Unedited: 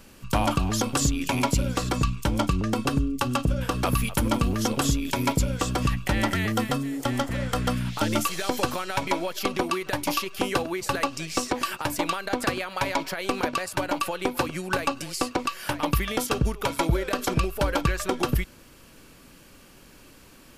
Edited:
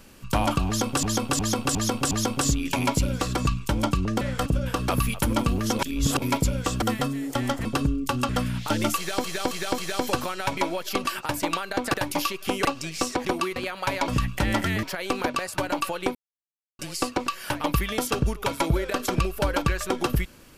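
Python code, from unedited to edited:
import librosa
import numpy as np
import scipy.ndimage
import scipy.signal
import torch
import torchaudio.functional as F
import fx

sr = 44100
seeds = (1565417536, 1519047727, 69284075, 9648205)

y = fx.edit(x, sr, fx.repeat(start_s=0.67, length_s=0.36, count=5),
    fx.swap(start_s=2.77, length_s=0.64, other_s=7.35, other_length_s=0.25),
    fx.reverse_span(start_s=4.74, length_s=0.43),
    fx.move(start_s=5.77, length_s=0.75, to_s=13.02),
    fx.repeat(start_s=8.28, length_s=0.27, count=4),
    fx.swap(start_s=9.55, length_s=0.31, other_s=11.61, other_length_s=0.89),
    fx.cut(start_s=10.57, length_s=0.44),
    fx.silence(start_s=14.34, length_s=0.64), tone=tone)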